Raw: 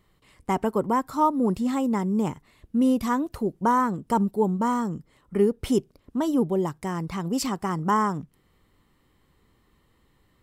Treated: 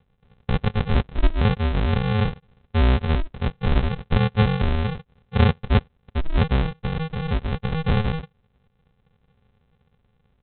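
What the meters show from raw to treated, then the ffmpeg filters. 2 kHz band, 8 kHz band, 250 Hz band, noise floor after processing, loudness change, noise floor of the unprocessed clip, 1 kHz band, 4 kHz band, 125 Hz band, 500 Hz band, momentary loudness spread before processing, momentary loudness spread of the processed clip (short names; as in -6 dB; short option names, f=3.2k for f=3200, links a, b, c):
+6.5 dB, under -40 dB, -3.0 dB, -67 dBFS, +2.0 dB, -65 dBFS, -5.5 dB, +8.5 dB, +13.0 dB, -2.5 dB, 8 LU, 9 LU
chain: -af "highpass=120,aresample=8000,acrusher=samples=25:mix=1:aa=0.000001,aresample=44100,volume=4dB"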